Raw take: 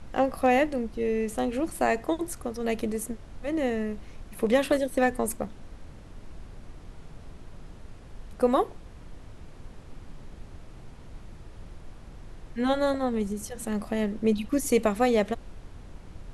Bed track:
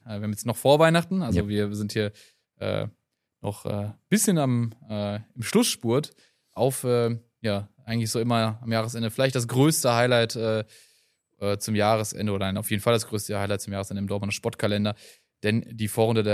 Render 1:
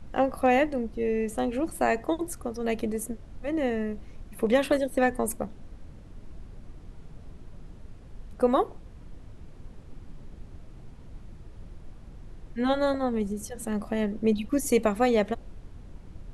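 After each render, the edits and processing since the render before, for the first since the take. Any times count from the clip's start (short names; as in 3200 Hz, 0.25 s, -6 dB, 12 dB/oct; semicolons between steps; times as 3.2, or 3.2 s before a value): denoiser 6 dB, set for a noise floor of -47 dBFS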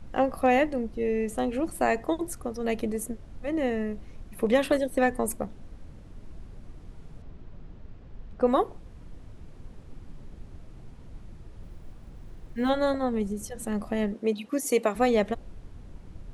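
7.22–8.47 air absorption 120 m; 11.63–12.7 block floating point 7-bit; 14.14–14.95 HPF 290 Hz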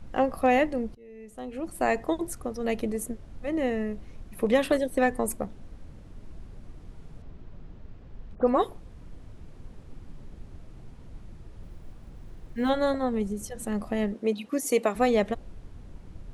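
0.95–1.9 fade in quadratic, from -23 dB; 8.35–9.2 dispersion highs, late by 85 ms, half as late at 3000 Hz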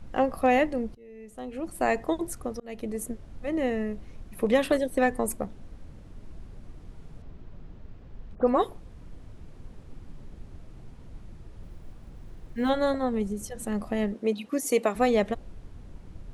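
2.6–3.2 fade in equal-power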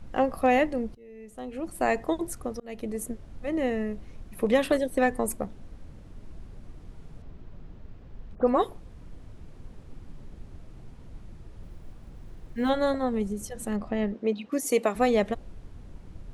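13.76–14.52 air absorption 110 m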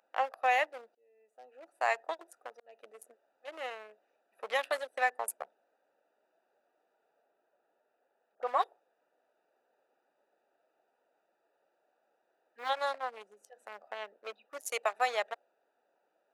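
Wiener smoothing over 41 samples; HPF 730 Hz 24 dB/oct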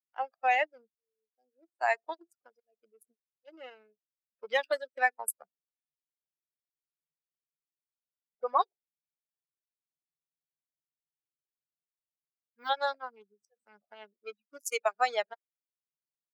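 per-bin expansion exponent 2; AGC gain up to 6 dB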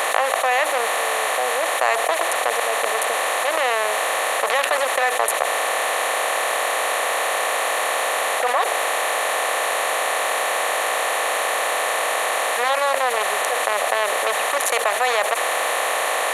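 per-bin compression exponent 0.2; fast leveller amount 70%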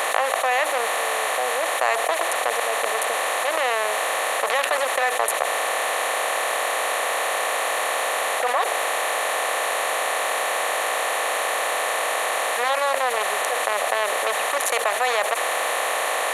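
gain -2 dB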